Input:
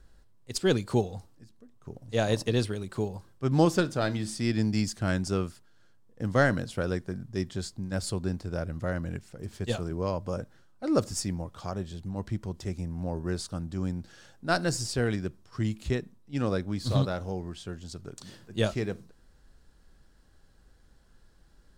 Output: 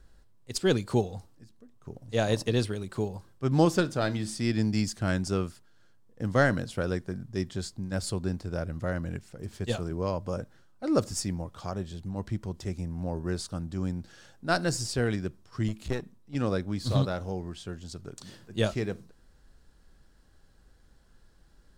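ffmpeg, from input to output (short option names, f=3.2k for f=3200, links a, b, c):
-filter_complex "[0:a]asettb=1/sr,asplit=3[a][b][c];[a]atrim=end=15.684[d];[b]atrim=start=15.68:end=16.35,asetpts=PTS-STARTPTS,afade=t=in:d=0.004:c=qsin,afade=t=out:st=0.666:d=0.004:c=qsin,aeval=exprs='clip(val(0),-1,0.0112)':c=same[e];[c]atrim=start=16.346[f];[d][e]acrossfade=d=0.004:c1=hsin:c2=qsin[g];[g][f]acrossfade=d=0.004:c1=qsin:c2=hsin"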